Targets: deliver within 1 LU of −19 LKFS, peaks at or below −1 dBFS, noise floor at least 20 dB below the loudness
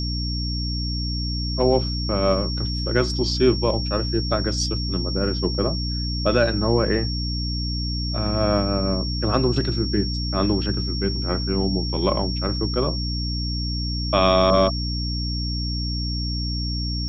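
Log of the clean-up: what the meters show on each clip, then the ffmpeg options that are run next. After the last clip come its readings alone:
mains hum 60 Hz; hum harmonics up to 300 Hz; level of the hum −24 dBFS; interfering tone 5,500 Hz; level of the tone −29 dBFS; integrated loudness −23.0 LKFS; sample peak −5.0 dBFS; target loudness −19.0 LKFS
→ -af "bandreject=frequency=60:width_type=h:width=6,bandreject=frequency=120:width_type=h:width=6,bandreject=frequency=180:width_type=h:width=6,bandreject=frequency=240:width_type=h:width=6,bandreject=frequency=300:width_type=h:width=6"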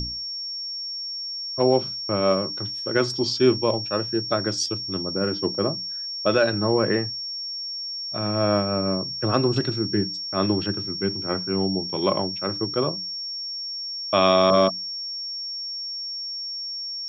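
mains hum none found; interfering tone 5,500 Hz; level of the tone −29 dBFS
→ -af "bandreject=frequency=5500:width=30"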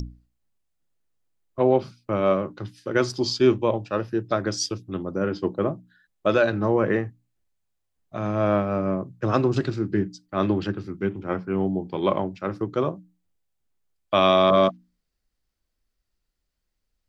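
interfering tone none found; integrated loudness −24.0 LKFS; sample peak −6.5 dBFS; target loudness −19.0 LKFS
→ -af "volume=5dB"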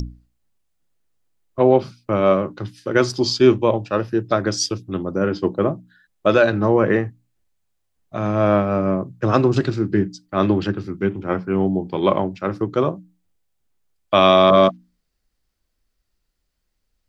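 integrated loudness −19.0 LKFS; sample peak −1.5 dBFS; background noise floor −73 dBFS

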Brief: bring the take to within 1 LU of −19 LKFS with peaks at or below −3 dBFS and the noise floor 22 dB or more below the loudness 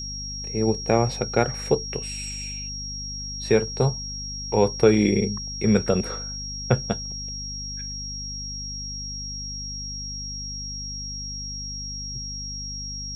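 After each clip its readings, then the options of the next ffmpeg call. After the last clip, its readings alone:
mains hum 50 Hz; hum harmonics up to 250 Hz; level of the hum −34 dBFS; interfering tone 5,600 Hz; level of the tone −32 dBFS; integrated loudness −26.0 LKFS; sample peak −4.5 dBFS; target loudness −19.0 LKFS
→ -af "bandreject=frequency=50:width_type=h:width=6,bandreject=frequency=100:width_type=h:width=6,bandreject=frequency=150:width_type=h:width=6,bandreject=frequency=200:width_type=h:width=6,bandreject=frequency=250:width_type=h:width=6"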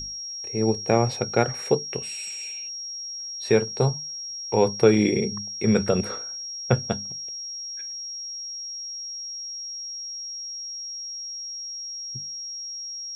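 mains hum none found; interfering tone 5,600 Hz; level of the tone −32 dBFS
→ -af "bandreject=frequency=5600:width=30"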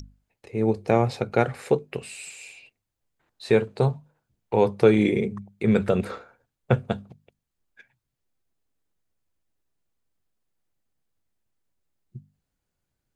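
interfering tone none found; integrated loudness −24.0 LKFS; sample peak −5.0 dBFS; target loudness −19.0 LKFS
→ -af "volume=5dB,alimiter=limit=-3dB:level=0:latency=1"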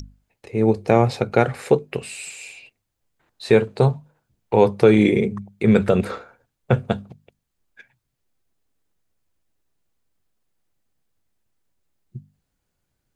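integrated loudness −19.5 LKFS; sample peak −3.0 dBFS; background noise floor −77 dBFS

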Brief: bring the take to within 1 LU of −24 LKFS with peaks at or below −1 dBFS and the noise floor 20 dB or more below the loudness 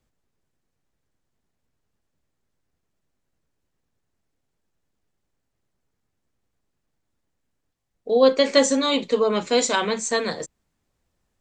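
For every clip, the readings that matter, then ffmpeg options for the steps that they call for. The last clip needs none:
integrated loudness −20.5 LKFS; sample peak −4.5 dBFS; target loudness −24.0 LKFS
→ -af "volume=-3.5dB"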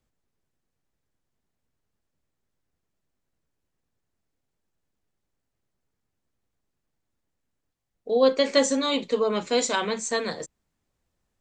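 integrated loudness −24.0 LKFS; sample peak −8.0 dBFS; background noise floor −81 dBFS

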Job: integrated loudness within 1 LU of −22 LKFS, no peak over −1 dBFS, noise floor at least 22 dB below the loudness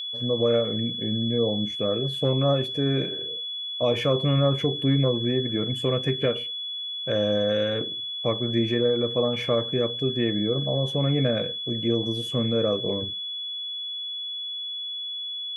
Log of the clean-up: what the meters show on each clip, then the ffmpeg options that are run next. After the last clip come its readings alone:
interfering tone 3,400 Hz; level of the tone −30 dBFS; integrated loudness −25.0 LKFS; sample peak −11.0 dBFS; target loudness −22.0 LKFS
→ -af "bandreject=frequency=3400:width=30"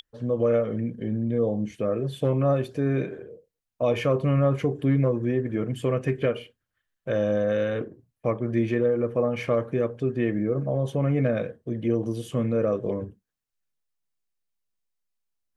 interfering tone none found; integrated loudness −26.0 LKFS; sample peak −12.0 dBFS; target loudness −22.0 LKFS
→ -af "volume=4dB"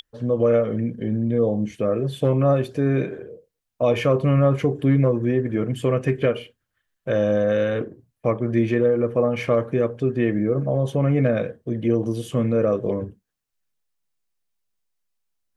integrated loudness −22.0 LKFS; sample peak −8.0 dBFS; background noise floor −80 dBFS

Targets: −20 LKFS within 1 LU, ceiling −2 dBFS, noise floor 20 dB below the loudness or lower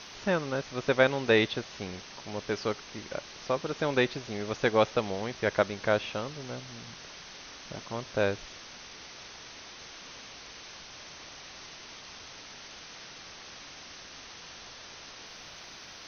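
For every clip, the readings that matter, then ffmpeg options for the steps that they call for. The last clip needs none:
background noise floor −47 dBFS; target noise floor −51 dBFS; integrated loudness −30.5 LKFS; sample peak −8.0 dBFS; target loudness −20.0 LKFS
→ -af "afftdn=noise_reduction=6:noise_floor=-47"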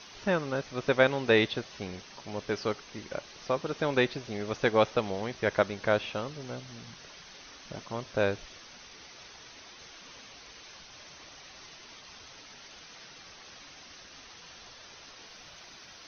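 background noise floor −51 dBFS; integrated loudness −30.0 LKFS; sample peak −8.0 dBFS; target loudness −20.0 LKFS
→ -af "volume=10dB,alimiter=limit=-2dB:level=0:latency=1"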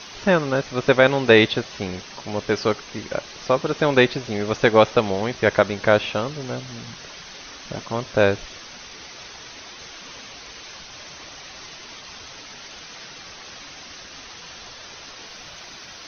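integrated loudness −20.5 LKFS; sample peak −2.0 dBFS; background noise floor −41 dBFS

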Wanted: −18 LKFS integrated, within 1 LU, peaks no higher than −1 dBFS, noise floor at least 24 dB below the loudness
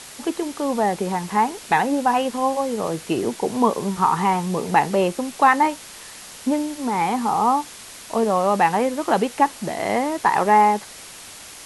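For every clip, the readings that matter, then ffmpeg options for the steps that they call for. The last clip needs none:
background noise floor −40 dBFS; target noise floor −45 dBFS; integrated loudness −21.0 LKFS; sample peak −3.0 dBFS; target loudness −18.0 LKFS
→ -af "afftdn=noise_reduction=6:noise_floor=-40"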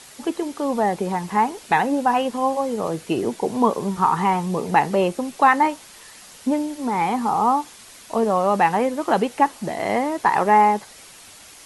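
background noise floor −45 dBFS; integrated loudness −21.0 LKFS; sample peak −3.0 dBFS; target loudness −18.0 LKFS
→ -af "volume=3dB,alimiter=limit=-1dB:level=0:latency=1"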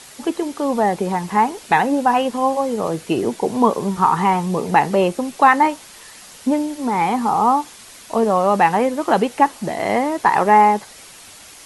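integrated loudness −18.0 LKFS; sample peak −1.0 dBFS; background noise floor −42 dBFS

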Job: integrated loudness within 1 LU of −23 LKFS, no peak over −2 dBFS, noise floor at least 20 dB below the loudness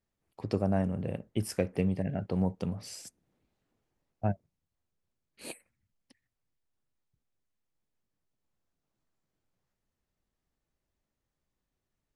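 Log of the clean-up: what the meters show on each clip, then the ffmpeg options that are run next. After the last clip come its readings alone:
integrated loudness −33.0 LKFS; sample peak −12.5 dBFS; target loudness −23.0 LKFS
→ -af "volume=10dB"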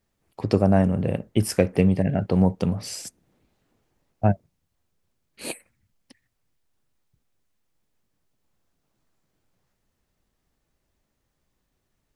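integrated loudness −23.0 LKFS; sample peak −2.5 dBFS; background noise floor −76 dBFS

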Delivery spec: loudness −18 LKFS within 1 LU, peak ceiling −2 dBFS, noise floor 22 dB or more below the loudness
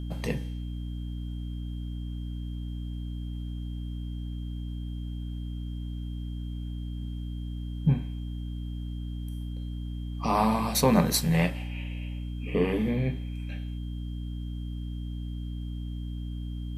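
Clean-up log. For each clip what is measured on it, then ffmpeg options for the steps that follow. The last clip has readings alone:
mains hum 60 Hz; hum harmonics up to 300 Hz; level of the hum −32 dBFS; interfering tone 3,200 Hz; level of the tone −55 dBFS; integrated loudness −32.0 LKFS; sample peak −9.0 dBFS; target loudness −18.0 LKFS
→ -af "bandreject=frequency=60:width_type=h:width=6,bandreject=frequency=120:width_type=h:width=6,bandreject=frequency=180:width_type=h:width=6,bandreject=frequency=240:width_type=h:width=6,bandreject=frequency=300:width_type=h:width=6"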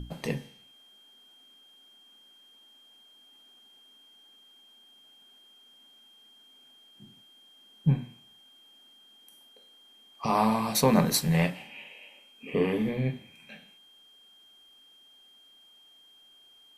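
mains hum none found; interfering tone 3,200 Hz; level of the tone −55 dBFS
→ -af "bandreject=frequency=3200:width=30"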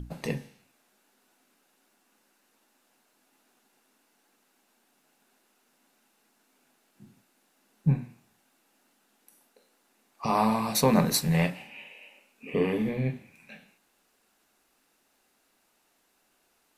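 interfering tone none found; integrated loudness −27.5 LKFS; sample peak −9.5 dBFS; target loudness −18.0 LKFS
→ -af "volume=9.5dB,alimiter=limit=-2dB:level=0:latency=1"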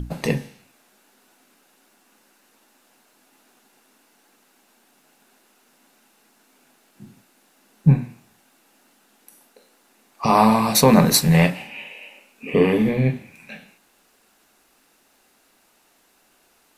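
integrated loudness −18.5 LKFS; sample peak −2.0 dBFS; background noise floor −61 dBFS

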